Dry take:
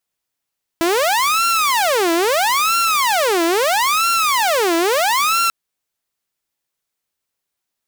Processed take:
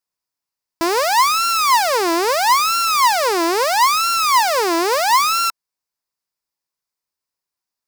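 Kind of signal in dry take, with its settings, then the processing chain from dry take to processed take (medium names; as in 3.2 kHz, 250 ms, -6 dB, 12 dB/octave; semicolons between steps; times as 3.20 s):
siren wail 331–1370 Hz 0.76 per s saw -11.5 dBFS 4.69 s
graphic EQ with 31 bands 1 kHz +7 dB, 3.15 kHz -5 dB, 5 kHz +7 dB; upward expansion 1.5:1, over -25 dBFS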